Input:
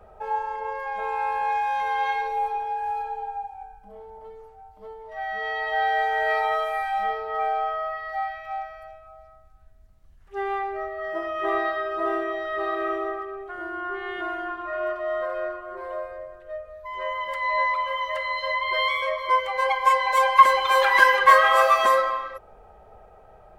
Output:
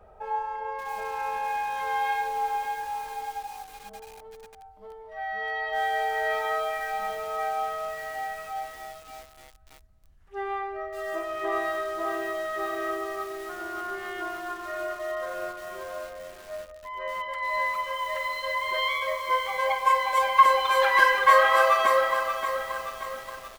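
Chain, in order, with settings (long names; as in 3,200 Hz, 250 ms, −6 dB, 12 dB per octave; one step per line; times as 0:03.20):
double-tracking delay 49 ms −12 dB
feedback echo at a low word length 579 ms, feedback 55%, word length 6 bits, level −8 dB
level −3.5 dB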